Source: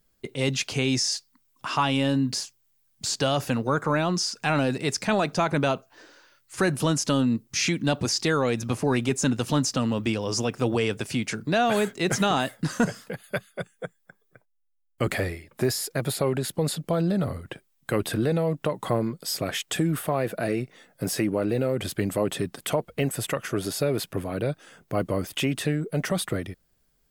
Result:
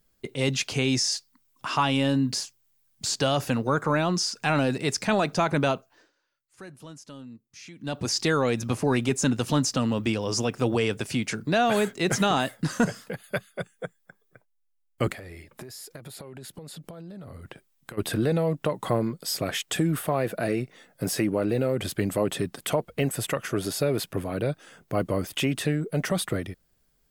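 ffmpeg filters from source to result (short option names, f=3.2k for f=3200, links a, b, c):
-filter_complex "[0:a]asplit=3[a][b][c];[a]afade=t=out:st=15.11:d=0.02[d];[b]acompressor=threshold=-37dB:ratio=20:attack=3.2:release=140:knee=1:detection=peak,afade=t=in:st=15.11:d=0.02,afade=t=out:st=17.97:d=0.02[e];[c]afade=t=in:st=17.97:d=0.02[f];[d][e][f]amix=inputs=3:normalize=0,asplit=3[g][h][i];[g]atrim=end=6.12,asetpts=PTS-STARTPTS,afade=t=out:st=5.69:d=0.43:silence=0.0944061[j];[h]atrim=start=6.12:end=7.75,asetpts=PTS-STARTPTS,volume=-20.5dB[k];[i]atrim=start=7.75,asetpts=PTS-STARTPTS,afade=t=in:d=0.43:silence=0.0944061[l];[j][k][l]concat=n=3:v=0:a=1"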